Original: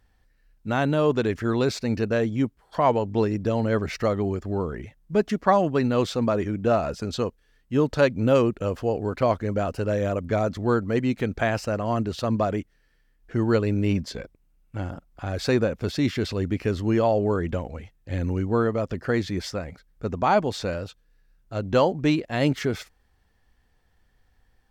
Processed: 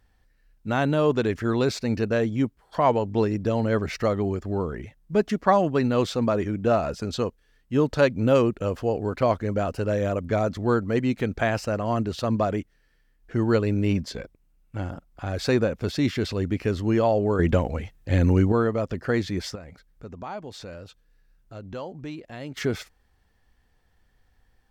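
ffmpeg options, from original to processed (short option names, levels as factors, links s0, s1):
-filter_complex "[0:a]asettb=1/sr,asplit=3[s0][s1][s2];[s0]atrim=end=19.554[s3];[s1]atrim=start=19.55:end=22.57,asetpts=PTS-STARTPTS,afade=t=in:d=0.004:c=qsin,afade=t=out:st=3.016:d=0.004:c=qsin,acompressor=threshold=0.00631:ratio=2:attack=3.2:release=140:knee=1:detection=peak[s4];[s2]atrim=start=22.566[s5];[s3][s4]acrossfade=d=0.004:c1=hsin:c2=qsin[s6];[s6][s5]acrossfade=d=0.004:c1=qsin:c2=hsin,asplit=3[s7][s8][s9];[s7]atrim=end=17.392[s10];[s8]atrim=start=17.388:end=18.522,asetpts=PTS-STARTPTS,volume=2.24[s11];[s9]atrim=start=18.518[s12];[s10][s11]acrossfade=d=0.004:c1=hsin:c2=hsin[s13];[s13][s12]acrossfade=d=0.004:c1=hsin:c2=hsin"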